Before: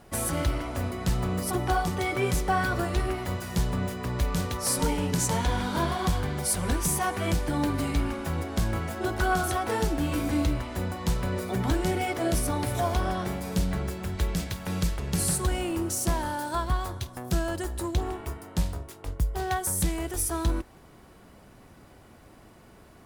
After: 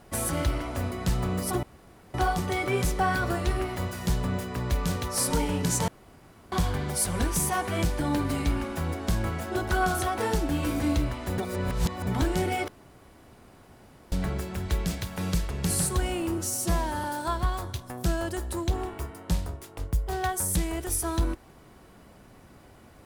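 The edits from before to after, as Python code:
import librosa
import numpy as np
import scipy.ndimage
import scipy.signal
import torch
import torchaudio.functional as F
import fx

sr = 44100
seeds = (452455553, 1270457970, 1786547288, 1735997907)

y = fx.edit(x, sr, fx.insert_room_tone(at_s=1.63, length_s=0.51),
    fx.room_tone_fill(start_s=5.37, length_s=0.64),
    fx.reverse_span(start_s=10.87, length_s=0.69),
    fx.room_tone_fill(start_s=12.17, length_s=1.44),
    fx.stretch_span(start_s=15.87, length_s=0.44, factor=1.5), tone=tone)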